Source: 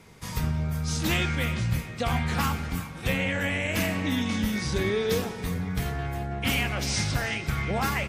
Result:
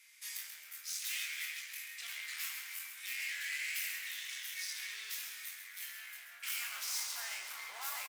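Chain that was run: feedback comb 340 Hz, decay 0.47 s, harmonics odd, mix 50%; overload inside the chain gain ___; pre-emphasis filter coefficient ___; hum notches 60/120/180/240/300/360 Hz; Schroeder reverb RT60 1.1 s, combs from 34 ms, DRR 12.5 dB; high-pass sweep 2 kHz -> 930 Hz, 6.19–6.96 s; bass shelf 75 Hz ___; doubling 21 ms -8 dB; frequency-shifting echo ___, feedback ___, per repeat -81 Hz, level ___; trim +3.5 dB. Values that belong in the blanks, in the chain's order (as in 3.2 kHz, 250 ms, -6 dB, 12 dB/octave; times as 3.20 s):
35.5 dB, 0.9, -5.5 dB, 134 ms, 45%, -8 dB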